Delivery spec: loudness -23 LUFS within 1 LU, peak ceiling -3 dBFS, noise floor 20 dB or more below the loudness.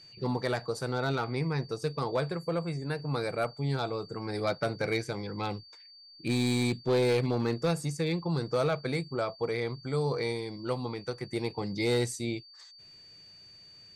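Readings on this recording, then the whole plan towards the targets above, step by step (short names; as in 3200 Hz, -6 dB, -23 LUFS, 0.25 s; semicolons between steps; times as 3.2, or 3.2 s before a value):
clipped 0.5%; flat tops at -21.0 dBFS; steady tone 4600 Hz; tone level -51 dBFS; loudness -31.5 LUFS; peak -21.0 dBFS; loudness target -23.0 LUFS
-> clip repair -21 dBFS; notch 4600 Hz, Q 30; gain +8.5 dB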